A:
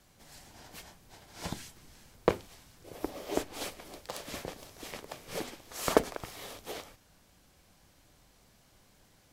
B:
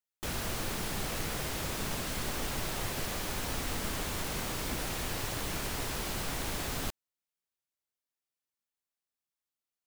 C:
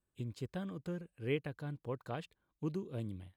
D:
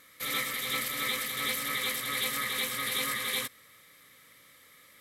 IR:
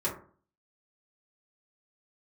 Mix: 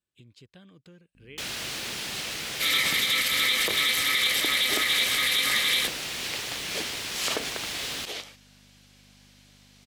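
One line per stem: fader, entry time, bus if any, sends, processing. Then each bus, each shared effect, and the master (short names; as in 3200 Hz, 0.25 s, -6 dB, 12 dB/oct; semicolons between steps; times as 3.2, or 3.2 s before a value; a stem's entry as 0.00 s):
0.0 dB, 1.40 s, no send, dry
-3.0 dB, 1.15 s, no send, hum 50 Hz, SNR 11 dB
-6.5 dB, 0.00 s, no send, low shelf 150 Hz +9 dB; compressor 2:1, threshold -44 dBFS, peak gain reduction 9.5 dB
+1.5 dB, 2.40 s, no send, dry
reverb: off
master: weighting filter D; limiter -14 dBFS, peak gain reduction 9.5 dB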